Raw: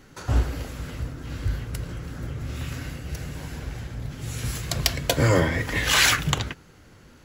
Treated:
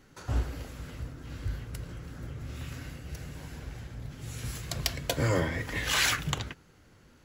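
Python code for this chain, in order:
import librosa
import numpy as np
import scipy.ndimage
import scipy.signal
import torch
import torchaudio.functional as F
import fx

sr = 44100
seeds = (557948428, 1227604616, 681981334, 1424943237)

y = x * 10.0 ** (-7.5 / 20.0)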